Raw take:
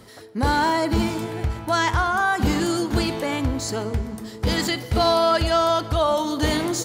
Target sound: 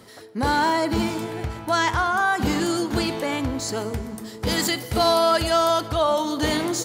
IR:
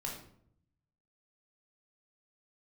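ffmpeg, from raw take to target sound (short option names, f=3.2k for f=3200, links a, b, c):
-filter_complex "[0:a]highpass=f=130:p=1,asplit=3[a][b][c];[a]afade=t=out:st=3.75:d=0.02[d];[b]adynamicequalizer=threshold=0.00708:dfrequency=6700:dqfactor=0.7:tfrequency=6700:tqfactor=0.7:attack=5:release=100:ratio=0.375:range=4:mode=boostabove:tftype=highshelf,afade=t=in:st=3.75:d=0.02,afade=t=out:st=5.87:d=0.02[e];[c]afade=t=in:st=5.87:d=0.02[f];[d][e][f]amix=inputs=3:normalize=0"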